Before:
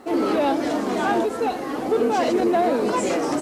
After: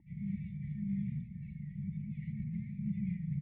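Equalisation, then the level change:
linear-phase brick-wall band-stop 190–1,800 Hz
dynamic equaliser 160 Hz, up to +5 dB, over −55 dBFS, Q 1.2
formant resonators in series u
+15.0 dB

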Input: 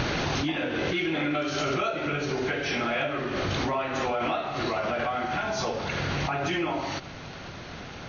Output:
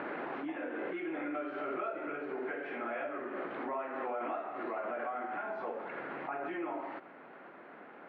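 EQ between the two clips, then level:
high-pass filter 260 Hz 24 dB per octave
low-pass filter 1,900 Hz 24 dB per octave
−8.5 dB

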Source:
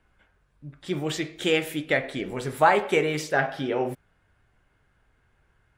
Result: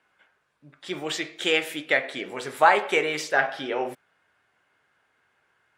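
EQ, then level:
meter weighting curve A
+2.0 dB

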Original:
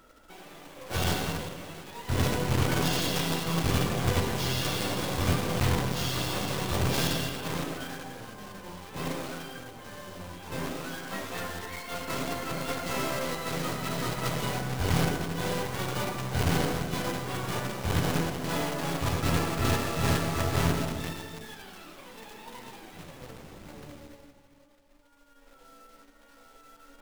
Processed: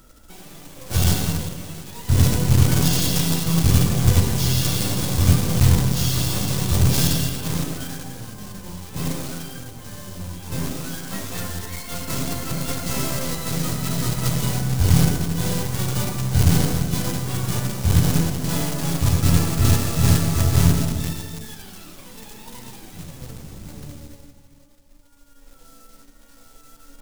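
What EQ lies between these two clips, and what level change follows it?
bass and treble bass +13 dB, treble +12 dB
0.0 dB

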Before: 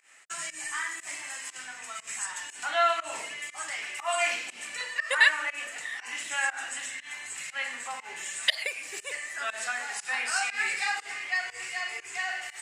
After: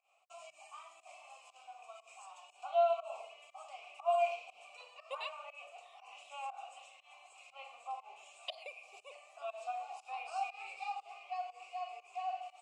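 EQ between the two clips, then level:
formant filter a
mains-hum notches 50/100/150 Hz
phaser with its sweep stopped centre 690 Hz, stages 4
+3.0 dB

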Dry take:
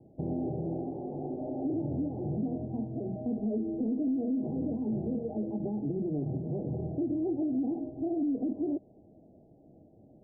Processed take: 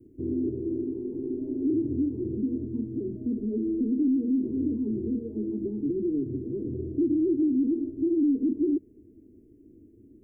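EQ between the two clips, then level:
Butterworth band-reject 750 Hz, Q 0.77
phaser with its sweep stopped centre 820 Hz, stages 8
+8.0 dB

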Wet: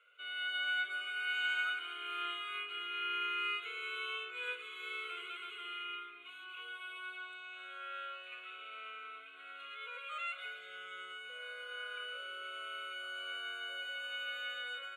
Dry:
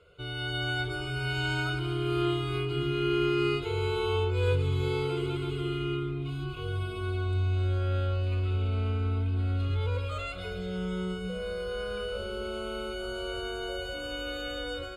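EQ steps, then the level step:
high-pass filter 840 Hz 24 dB per octave
low-pass filter 3,100 Hz 6 dB per octave
phaser with its sweep stopped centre 2,100 Hz, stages 4
+2.5 dB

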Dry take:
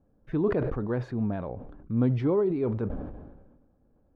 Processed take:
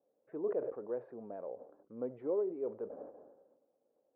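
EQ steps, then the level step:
dynamic equaliser 890 Hz, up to −4 dB, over −38 dBFS, Q 0.7
four-pole ladder band-pass 600 Hz, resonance 50%
high-frequency loss of the air 220 metres
+4.0 dB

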